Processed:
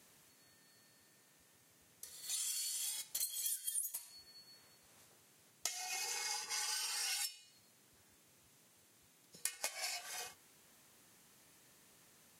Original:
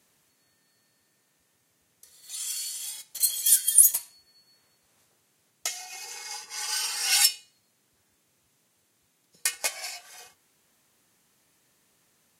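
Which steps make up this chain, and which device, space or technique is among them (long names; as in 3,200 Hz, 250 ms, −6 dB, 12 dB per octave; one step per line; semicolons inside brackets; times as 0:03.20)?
serial compression, leveller first (downward compressor 2.5 to 1, threshold −26 dBFS, peak gain reduction 10.5 dB; downward compressor 8 to 1, threshold −39 dBFS, peak gain reduction 19 dB)
level +1.5 dB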